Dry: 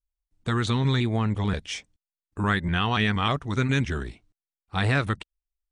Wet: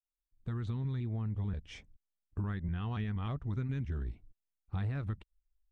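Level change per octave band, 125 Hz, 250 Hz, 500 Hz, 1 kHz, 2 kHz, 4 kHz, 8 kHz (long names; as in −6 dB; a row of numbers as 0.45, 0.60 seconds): −8.5 dB, −13.0 dB, −17.0 dB, −20.0 dB, −22.5 dB, −24.0 dB, below −20 dB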